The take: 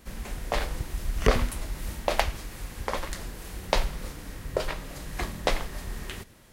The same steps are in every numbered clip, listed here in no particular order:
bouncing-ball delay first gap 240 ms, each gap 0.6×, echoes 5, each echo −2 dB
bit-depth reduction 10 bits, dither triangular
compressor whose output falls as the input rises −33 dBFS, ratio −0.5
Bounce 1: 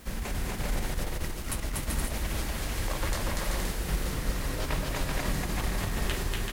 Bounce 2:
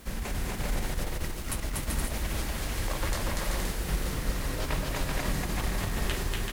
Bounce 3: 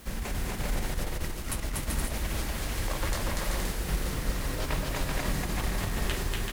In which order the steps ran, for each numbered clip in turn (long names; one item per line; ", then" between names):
compressor whose output falls as the input rises, then bouncing-ball delay, then bit-depth reduction
compressor whose output falls as the input rises, then bit-depth reduction, then bouncing-ball delay
bit-depth reduction, then compressor whose output falls as the input rises, then bouncing-ball delay